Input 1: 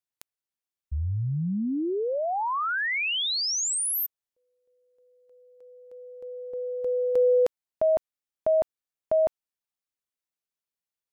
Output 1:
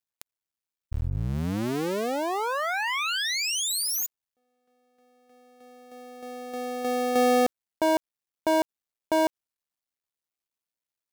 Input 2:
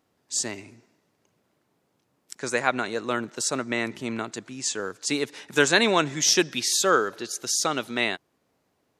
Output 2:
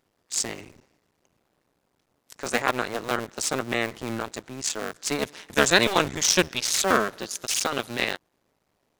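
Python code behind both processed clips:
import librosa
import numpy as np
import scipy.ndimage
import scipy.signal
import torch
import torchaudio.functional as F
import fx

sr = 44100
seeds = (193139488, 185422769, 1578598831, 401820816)

y = fx.cycle_switch(x, sr, every=2, mode='muted')
y = y * librosa.db_to_amplitude(2.5)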